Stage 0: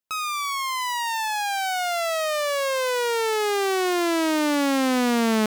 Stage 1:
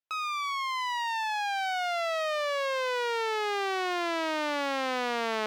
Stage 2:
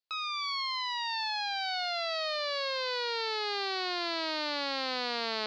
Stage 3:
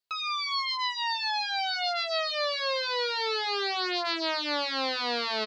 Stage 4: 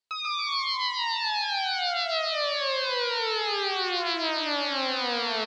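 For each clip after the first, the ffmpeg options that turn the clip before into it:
ffmpeg -i in.wav -filter_complex "[0:a]acrossover=split=400 5000:gain=0.0794 1 0.158[link_01][link_02][link_03];[link_01][link_02][link_03]amix=inputs=3:normalize=0,volume=-4dB" out.wav
ffmpeg -i in.wav -af "lowpass=frequency=4400:width_type=q:width=6.9,volume=-5.5dB" out.wav
ffmpeg -i in.wav -filter_complex "[0:a]asplit=2[link_01][link_02];[link_02]adelay=2.8,afreqshift=2.8[link_03];[link_01][link_03]amix=inputs=2:normalize=1,volume=6.5dB" out.wav
ffmpeg -i in.wav -filter_complex "[0:a]asplit=2[link_01][link_02];[link_02]aecho=0:1:140|280|420|560|700:0.631|0.265|0.111|0.0467|0.0196[link_03];[link_01][link_03]amix=inputs=2:normalize=0,aresample=22050,aresample=44100" out.wav

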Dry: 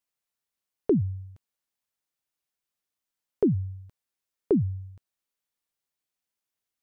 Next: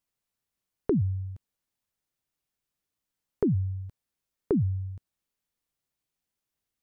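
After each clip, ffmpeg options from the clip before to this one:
ffmpeg -i in.wav -af "lowshelf=frequency=290:gain=10,acompressor=threshold=-29dB:ratio=2" out.wav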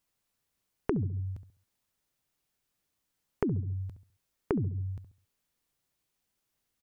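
ffmpeg -i in.wav -filter_complex "[0:a]asplit=2[link_01][link_02];[link_02]adelay=68,lowpass=frequency=1000:poles=1,volume=-10dB,asplit=2[link_03][link_04];[link_04]adelay=68,lowpass=frequency=1000:poles=1,volume=0.33,asplit=2[link_05][link_06];[link_06]adelay=68,lowpass=frequency=1000:poles=1,volume=0.33,asplit=2[link_07][link_08];[link_08]adelay=68,lowpass=frequency=1000:poles=1,volume=0.33[link_09];[link_01][link_03][link_05][link_07][link_09]amix=inputs=5:normalize=0,acompressor=threshold=-32dB:ratio=12,volume=5dB" out.wav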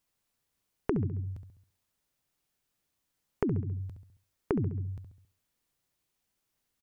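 ffmpeg -i in.wav -af "aecho=1:1:68|136|204|272:0.158|0.0777|0.0381|0.0186" out.wav

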